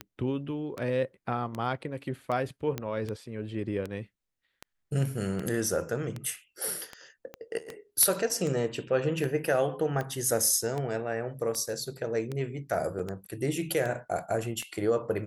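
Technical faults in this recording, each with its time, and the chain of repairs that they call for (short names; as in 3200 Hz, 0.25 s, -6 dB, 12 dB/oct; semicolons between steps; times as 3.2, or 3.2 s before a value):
tick 78 rpm -21 dBFS
2.78 pop -17 dBFS
7.34 pop -26 dBFS
12.99 gap 4 ms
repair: de-click; interpolate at 12.99, 4 ms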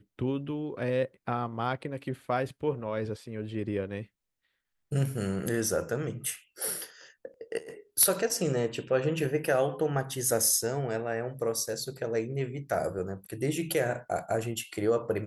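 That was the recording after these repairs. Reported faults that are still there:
7.34 pop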